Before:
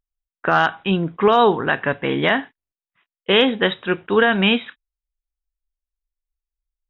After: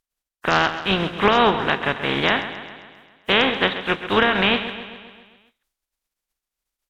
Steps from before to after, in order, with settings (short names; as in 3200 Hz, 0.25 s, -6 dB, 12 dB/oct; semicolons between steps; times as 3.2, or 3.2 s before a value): spectral contrast lowered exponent 0.46; treble ducked by the level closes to 2900 Hz, closed at -11 dBFS; feedback echo 0.133 s, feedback 59%, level -12 dB; gain -1.5 dB